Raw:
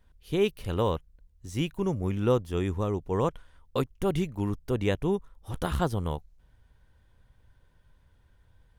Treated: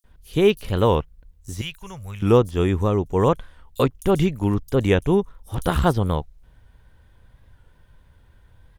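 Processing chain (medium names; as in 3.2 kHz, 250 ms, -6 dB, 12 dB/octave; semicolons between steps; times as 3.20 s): 1.57–2.19 s: amplifier tone stack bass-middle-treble 10-0-10; bands offset in time highs, lows 40 ms, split 5.9 kHz; warped record 45 rpm, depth 100 cents; trim +8.5 dB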